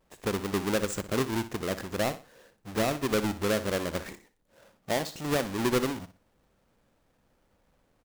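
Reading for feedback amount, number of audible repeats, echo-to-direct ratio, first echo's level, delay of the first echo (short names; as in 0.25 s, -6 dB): 29%, 3, -13.0 dB, -13.5 dB, 61 ms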